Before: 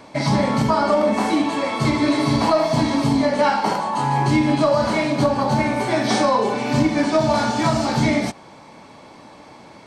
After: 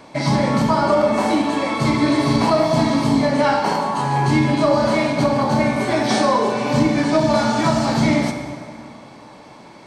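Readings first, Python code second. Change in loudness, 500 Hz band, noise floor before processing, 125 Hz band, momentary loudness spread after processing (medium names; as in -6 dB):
+1.5 dB, +1.5 dB, -44 dBFS, +1.5 dB, 4 LU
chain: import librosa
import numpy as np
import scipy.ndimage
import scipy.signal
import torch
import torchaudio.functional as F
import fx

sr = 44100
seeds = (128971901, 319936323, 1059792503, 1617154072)

y = fx.rev_plate(x, sr, seeds[0], rt60_s=2.3, hf_ratio=0.7, predelay_ms=0, drr_db=5.5)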